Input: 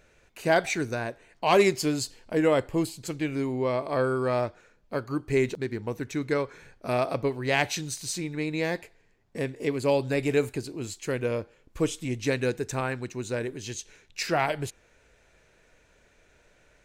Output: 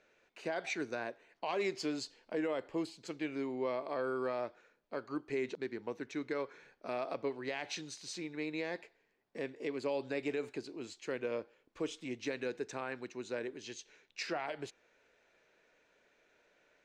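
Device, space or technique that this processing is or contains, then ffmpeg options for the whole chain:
DJ mixer with the lows and highs turned down: -filter_complex "[0:a]acrossover=split=210 6300:gain=0.1 1 0.0631[s0][s1][s2];[s0][s1][s2]amix=inputs=3:normalize=0,alimiter=limit=0.106:level=0:latency=1:release=90,volume=0.447"

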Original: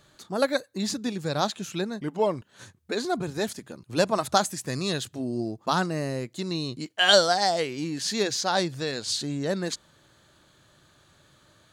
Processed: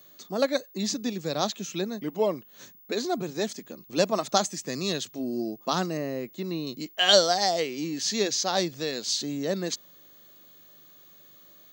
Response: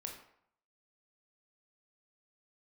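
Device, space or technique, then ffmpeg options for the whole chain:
old television with a line whistle: -filter_complex "[0:a]asettb=1/sr,asplit=3[s0][s1][s2];[s0]atrim=end=5.974[s3];[s1]atrim=start=5.97:end=6.67,asetpts=PTS-STARTPTS,afade=t=in:d=0.004:c=qsin,afade=t=out:st=0.696:d=0.004:c=qsin,acrossover=split=3000[s4][s5];[s5]acompressor=threshold=0.00224:ratio=4:attack=1:release=60[s6];[s4][s6]amix=inputs=2:normalize=0[s7];[s2]atrim=start=6.666[s8];[s3][s7]acrossfade=d=0.004:c1=hsin:c2=qsin[s9];[s9][s8]acrossfade=d=0.004:c1=qsin:c2=hsin,highpass=f=170:w=0.5412,highpass=f=170:w=1.3066,equalizer=f=910:t=q:w=4:g=-5,equalizer=f=1500:t=q:w=4:g=-7,equalizer=f=6200:t=q:w=4:g=5,lowpass=f=7300:w=0.5412,lowpass=f=7300:w=1.3066,aeval=exprs='val(0)+0.00282*sin(2*PI*15625*n/s)':c=same"

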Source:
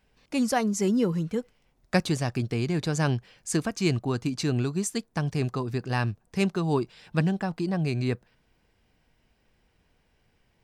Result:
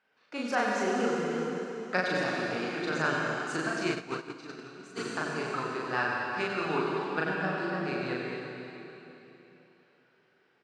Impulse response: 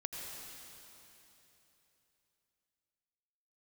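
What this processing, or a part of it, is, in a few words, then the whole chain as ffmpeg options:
station announcement: -filter_complex "[0:a]highpass=350,lowpass=4400,equalizer=f=1400:t=o:w=0.47:g=11,aecho=1:1:37.9|93.29:0.891|0.447[s0];[1:a]atrim=start_sample=2205[s1];[s0][s1]afir=irnorm=-1:irlink=0,asplit=3[s2][s3][s4];[s2]afade=t=out:st=3.9:d=0.02[s5];[s3]agate=range=0.2:threshold=0.0501:ratio=16:detection=peak,afade=t=in:st=3.9:d=0.02,afade=t=out:st=4.96:d=0.02[s6];[s4]afade=t=in:st=4.96:d=0.02[s7];[s5][s6][s7]amix=inputs=3:normalize=0,volume=0.708"

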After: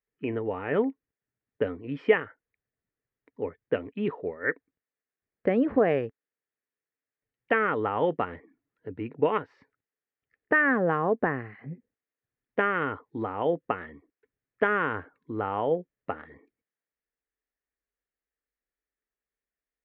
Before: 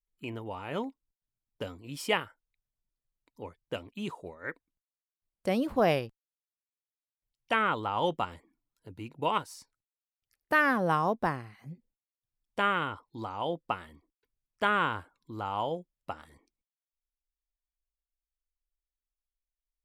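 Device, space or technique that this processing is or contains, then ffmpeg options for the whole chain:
bass amplifier: -af "acompressor=threshold=0.0398:ratio=4,highpass=86,equalizer=f=270:t=q:w=4:g=5,equalizer=f=440:t=q:w=4:g=10,equalizer=f=950:t=q:w=4:g=-5,equalizer=f=1800:t=q:w=4:g=8,lowpass=f=2300:w=0.5412,lowpass=f=2300:w=1.3066,volume=1.78"

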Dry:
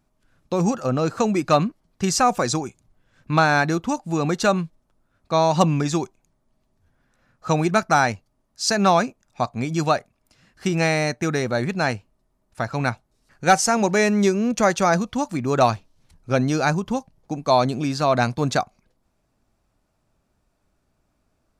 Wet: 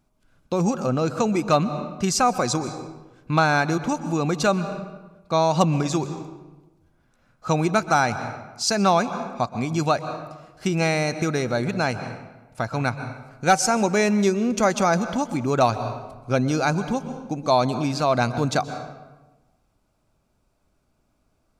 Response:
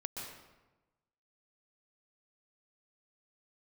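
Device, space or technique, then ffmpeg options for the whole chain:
ducked reverb: -filter_complex "[0:a]asplit=3[s0][s1][s2];[1:a]atrim=start_sample=2205[s3];[s1][s3]afir=irnorm=-1:irlink=0[s4];[s2]apad=whole_len=952138[s5];[s4][s5]sidechaincompress=threshold=0.0447:ratio=4:attack=22:release=177,volume=0.631[s6];[s0][s6]amix=inputs=2:normalize=0,bandreject=f=1800:w=9.3,volume=0.75"

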